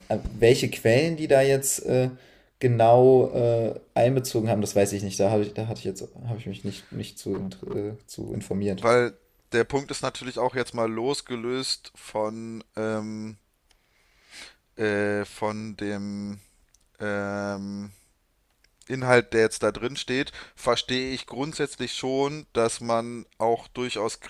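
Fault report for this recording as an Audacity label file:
7.330000	7.760000	clipped -28 dBFS

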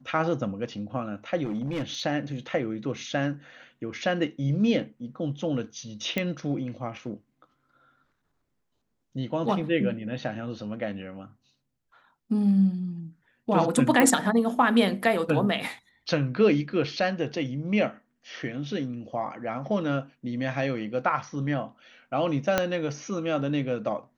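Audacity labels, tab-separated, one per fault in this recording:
1.450000	2.020000	clipped -26 dBFS
6.180000	6.180000	pop -13 dBFS
14.000000	14.000000	pop -8 dBFS
22.580000	22.580000	pop -7 dBFS

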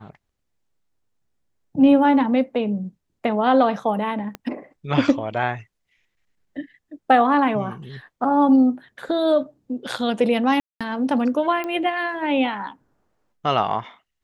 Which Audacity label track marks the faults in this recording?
4.350000	4.350000	pop -17 dBFS
10.600000	10.810000	dropout 206 ms
11.640000	11.640000	pop -16 dBFS

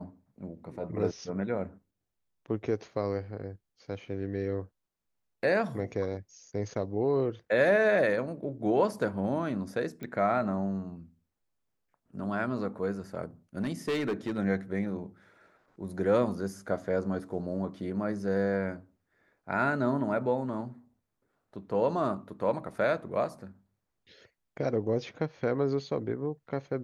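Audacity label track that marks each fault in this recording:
10.030000	10.030000	pop -26 dBFS
13.610000	14.390000	clipped -26 dBFS

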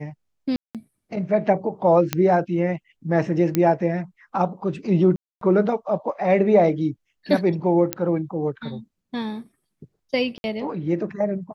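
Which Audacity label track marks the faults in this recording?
0.560000	0.750000	dropout 187 ms
2.130000	2.130000	pop -5 dBFS
3.550000	3.550000	pop -7 dBFS
5.160000	5.410000	dropout 253 ms
7.930000	7.930000	pop -6 dBFS
10.380000	10.440000	dropout 61 ms

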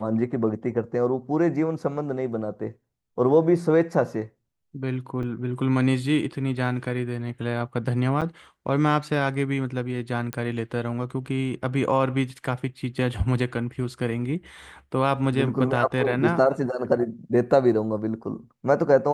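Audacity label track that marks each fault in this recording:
5.230000	5.240000	dropout 5.1 ms
8.210000	8.220000	dropout 7.2 ms
10.330000	10.330000	pop -15 dBFS

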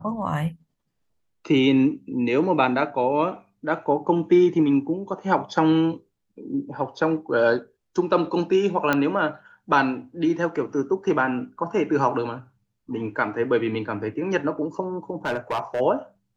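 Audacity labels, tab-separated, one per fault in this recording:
8.930000	8.930000	pop -8 dBFS
15.250000	15.810000	clipped -21 dBFS

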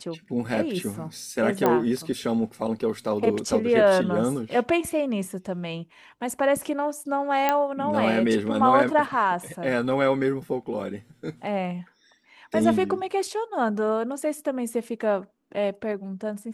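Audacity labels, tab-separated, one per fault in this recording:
1.660000	1.660000	pop -9 dBFS
7.490000	7.490000	pop -8 dBFS

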